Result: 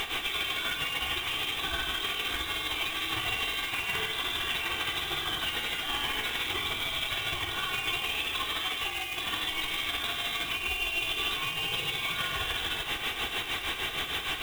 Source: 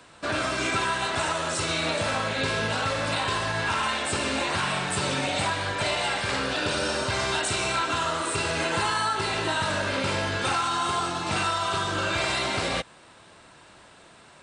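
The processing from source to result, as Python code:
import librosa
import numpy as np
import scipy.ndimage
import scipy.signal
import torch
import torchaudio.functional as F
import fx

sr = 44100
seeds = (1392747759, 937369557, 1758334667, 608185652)

y = fx.delta_mod(x, sr, bps=64000, step_db=-27.5)
y = y * (1.0 - 0.73 / 2.0 + 0.73 / 2.0 * np.cos(2.0 * np.pi * 6.5 * (np.arange(len(y)) / sr)))
y = fx.over_compress(y, sr, threshold_db=-33.0, ratio=-1.0)
y = fx.freq_invert(y, sr, carrier_hz=3800)
y = fx.air_absorb(y, sr, metres=53.0)
y = y + 10.0 ** (-9.0 / 20.0) * np.pad(y, (int(102 * sr / 1000.0), 0))[:len(y)]
y = fx.quant_companded(y, sr, bits=4)
y = y + 0.46 * np.pad(y, (int(2.6 * sr / 1000.0), 0))[:len(y)]
y = y * librosa.db_to_amplitude(1.0)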